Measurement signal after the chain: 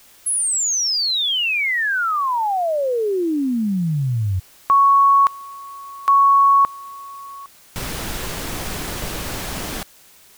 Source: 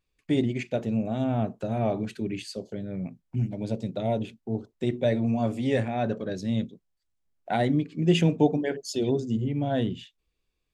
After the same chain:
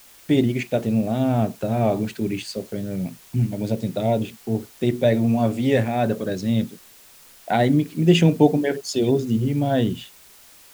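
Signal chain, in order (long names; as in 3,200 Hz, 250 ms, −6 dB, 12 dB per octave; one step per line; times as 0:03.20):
background noise white −55 dBFS
level +6 dB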